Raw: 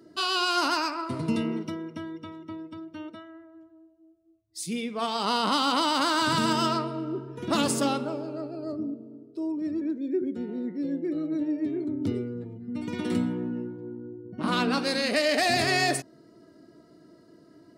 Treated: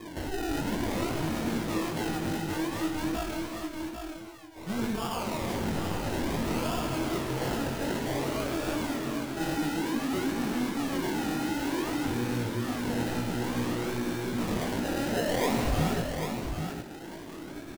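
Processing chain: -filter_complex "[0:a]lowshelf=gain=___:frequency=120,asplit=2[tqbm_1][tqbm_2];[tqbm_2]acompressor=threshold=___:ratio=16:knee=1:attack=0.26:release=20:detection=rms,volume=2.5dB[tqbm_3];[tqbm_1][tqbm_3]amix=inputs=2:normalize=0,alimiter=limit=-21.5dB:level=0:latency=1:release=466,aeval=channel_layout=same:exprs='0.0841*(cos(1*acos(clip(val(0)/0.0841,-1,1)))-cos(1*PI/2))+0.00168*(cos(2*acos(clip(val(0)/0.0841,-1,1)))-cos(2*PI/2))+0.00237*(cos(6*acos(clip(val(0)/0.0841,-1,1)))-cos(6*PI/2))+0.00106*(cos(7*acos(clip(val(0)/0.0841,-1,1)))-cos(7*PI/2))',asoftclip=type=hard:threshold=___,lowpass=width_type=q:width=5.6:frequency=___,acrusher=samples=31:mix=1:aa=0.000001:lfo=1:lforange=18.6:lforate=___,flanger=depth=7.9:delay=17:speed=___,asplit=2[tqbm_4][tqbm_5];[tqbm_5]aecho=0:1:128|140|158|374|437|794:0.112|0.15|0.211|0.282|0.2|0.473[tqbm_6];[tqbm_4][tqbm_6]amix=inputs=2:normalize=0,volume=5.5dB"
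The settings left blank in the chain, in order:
7, -37dB, -33.5dB, 2000, 0.55, 2.5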